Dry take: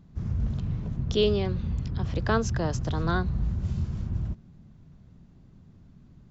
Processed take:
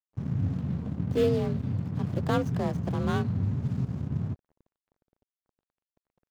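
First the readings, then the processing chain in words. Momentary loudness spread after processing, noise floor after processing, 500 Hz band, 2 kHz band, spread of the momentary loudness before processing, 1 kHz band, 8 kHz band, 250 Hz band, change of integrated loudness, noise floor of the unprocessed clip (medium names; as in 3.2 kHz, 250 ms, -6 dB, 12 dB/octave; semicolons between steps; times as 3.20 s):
7 LU, under -85 dBFS, -1.0 dB, -6.0 dB, 7 LU, -2.5 dB, no reading, +1.5 dB, -0.5 dB, -54 dBFS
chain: median filter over 25 samples; frequency shift +45 Hz; crossover distortion -44.5 dBFS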